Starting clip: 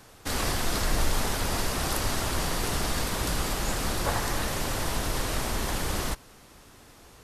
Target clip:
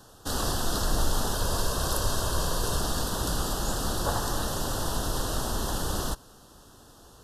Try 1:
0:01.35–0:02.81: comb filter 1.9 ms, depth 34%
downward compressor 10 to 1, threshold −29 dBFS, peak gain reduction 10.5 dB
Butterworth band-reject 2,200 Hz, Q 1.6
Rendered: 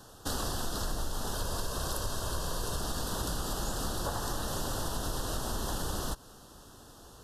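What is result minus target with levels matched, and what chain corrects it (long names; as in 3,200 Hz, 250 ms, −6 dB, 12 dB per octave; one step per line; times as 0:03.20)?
downward compressor: peak gain reduction +10.5 dB
0:01.35–0:02.81: comb filter 1.9 ms, depth 34%
Butterworth band-reject 2,200 Hz, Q 1.6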